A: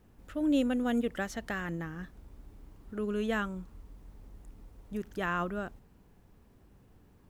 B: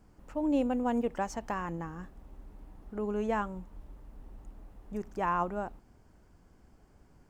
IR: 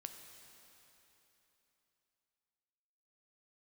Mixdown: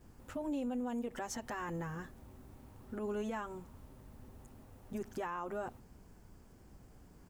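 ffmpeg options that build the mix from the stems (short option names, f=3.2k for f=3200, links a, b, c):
-filter_complex "[0:a]highshelf=f=2.7k:g=-10,acompressor=threshold=-36dB:ratio=6,volume=0dB[a];[1:a]adelay=8.3,volume=-2.5dB[b];[a][b]amix=inputs=2:normalize=0,highshelf=f=5.2k:g=10.5,alimiter=level_in=7dB:limit=-24dB:level=0:latency=1:release=98,volume=-7dB"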